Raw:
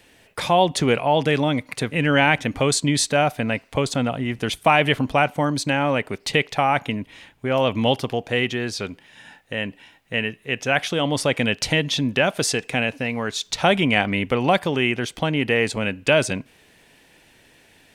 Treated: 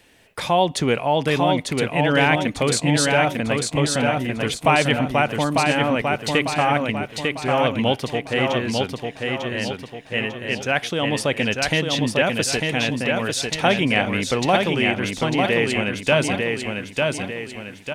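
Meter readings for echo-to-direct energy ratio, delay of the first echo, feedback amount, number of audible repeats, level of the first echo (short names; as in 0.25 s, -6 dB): -2.5 dB, 0.898 s, 45%, 5, -3.5 dB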